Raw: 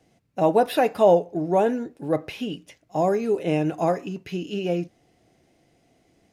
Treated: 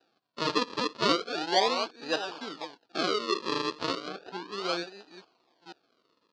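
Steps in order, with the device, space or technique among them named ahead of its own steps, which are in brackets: chunks repeated in reverse 477 ms, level -11 dB; circuit-bent sampling toy (decimation with a swept rate 40×, swing 100% 0.35 Hz; cabinet simulation 500–5100 Hz, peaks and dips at 580 Hz -6 dB, 2 kHz -9 dB, 4.4 kHz +8 dB); 4.08–4.52 s: treble shelf 3.2 kHz -9 dB; trim -1.5 dB

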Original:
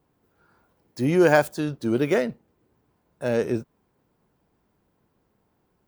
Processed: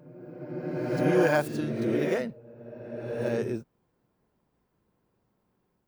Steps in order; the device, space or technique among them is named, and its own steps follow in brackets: reverse reverb (reverse; reverberation RT60 2.1 s, pre-delay 18 ms, DRR 0.5 dB; reverse); trim -7.5 dB

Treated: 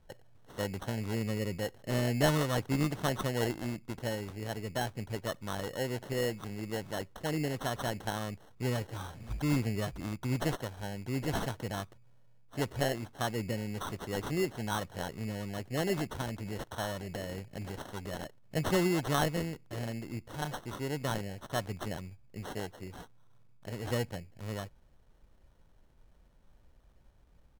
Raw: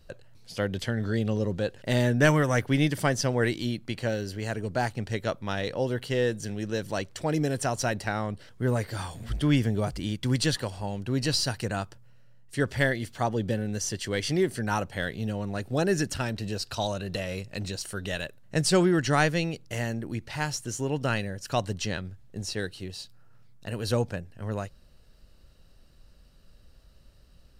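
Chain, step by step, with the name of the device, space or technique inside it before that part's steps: crushed at another speed (playback speed 0.8×; sample-and-hold 23×; playback speed 1.25×); trim -6.5 dB

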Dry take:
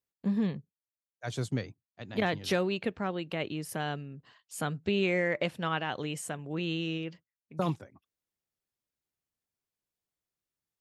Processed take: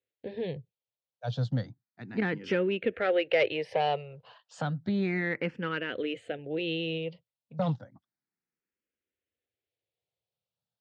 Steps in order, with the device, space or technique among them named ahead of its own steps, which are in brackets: 2.93–4.62 s: graphic EQ 125/250/500/1000/2000/4000/8000 Hz -6/-6/+7/+9/+11/-3/+12 dB; barber-pole phaser into a guitar amplifier (barber-pole phaser +0.32 Hz; saturation -22.5 dBFS, distortion -16 dB; cabinet simulation 79–4200 Hz, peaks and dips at 120 Hz +4 dB, 500 Hz +7 dB, 1.1 kHz -9 dB); trim +3.5 dB

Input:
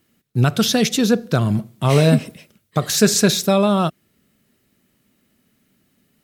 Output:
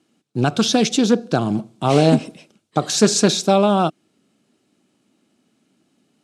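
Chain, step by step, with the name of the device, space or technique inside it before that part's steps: full-range speaker at full volume (loudspeaker Doppler distortion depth 0.17 ms; cabinet simulation 170–9000 Hz, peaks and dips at 310 Hz +7 dB, 780 Hz +6 dB, 1.9 kHz -8 dB)

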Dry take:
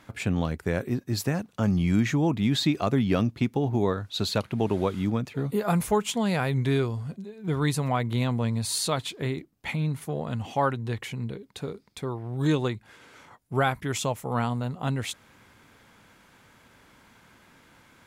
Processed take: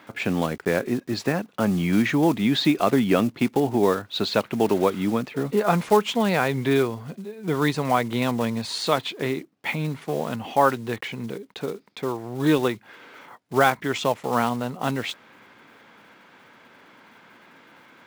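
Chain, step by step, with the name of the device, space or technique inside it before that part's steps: early digital voice recorder (band-pass 230–3700 Hz; block-companded coder 5-bit); trim +6.5 dB

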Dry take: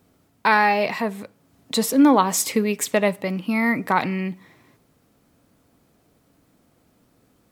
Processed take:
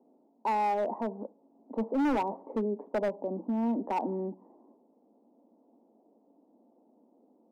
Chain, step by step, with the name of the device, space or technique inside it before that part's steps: Chebyshev band-pass 220–920 Hz, order 4; clipper into limiter (hard clipper -18 dBFS, distortion -9 dB; peak limiter -24.5 dBFS, peak gain reduction 6.5 dB)

